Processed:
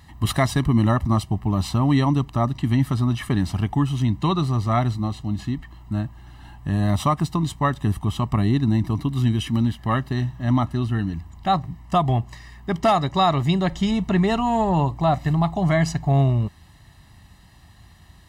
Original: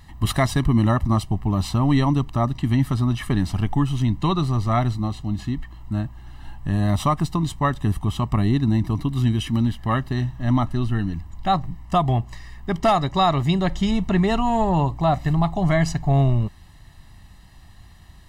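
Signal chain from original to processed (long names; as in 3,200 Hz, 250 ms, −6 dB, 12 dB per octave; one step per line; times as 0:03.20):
high-pass filter 56 Hz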